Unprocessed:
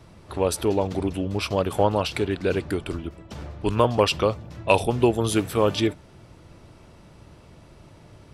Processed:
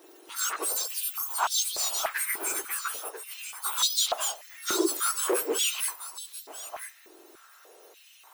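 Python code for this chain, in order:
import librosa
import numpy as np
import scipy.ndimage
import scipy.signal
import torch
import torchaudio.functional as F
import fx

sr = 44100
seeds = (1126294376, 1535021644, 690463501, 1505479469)

p1 = fx.octave_mirror(x, sr, pivot_hz=1900.0)
p2 = np.clip(10.0 ** (27.0 / 20.0) * p1, -1.0, 1.0) / 10.0 ** (27.0 / 20.0)
p3 = fx.high_shelf(p2, sr, hz=10000.0, db=3.5)
p4 = p3 + fx.echo_single(p3, sr, ms=989, db=-12.0, dry=0)
y = fx.filter_held_highpass(p4, sr, hz=3.4, low_hz=330.0, high_hz=3900.0)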